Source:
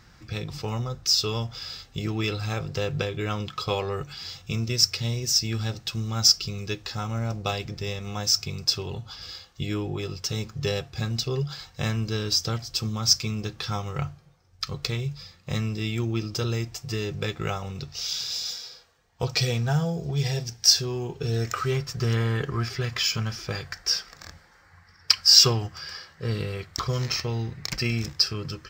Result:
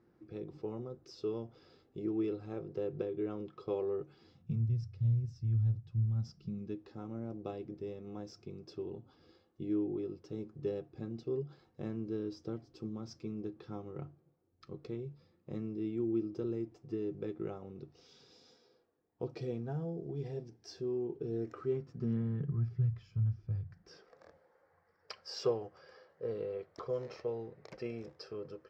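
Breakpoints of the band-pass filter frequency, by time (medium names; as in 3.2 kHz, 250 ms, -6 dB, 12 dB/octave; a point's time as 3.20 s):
band-pass filter, Q 3.2
4.20 s 350 Hz
4.69 s 110 Hz
6.02 s 110 Hz
6.86 s 320 Hz
21.70 s 320 Hz
23.00 s 100 Hz
23.66 s 100 Hz
24.08 s 500 Hz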